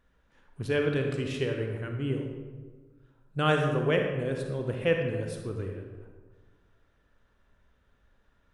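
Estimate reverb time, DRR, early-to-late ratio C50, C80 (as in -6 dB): 1.4 s, 2.5 dB, 3.5 dB, 5.5 dB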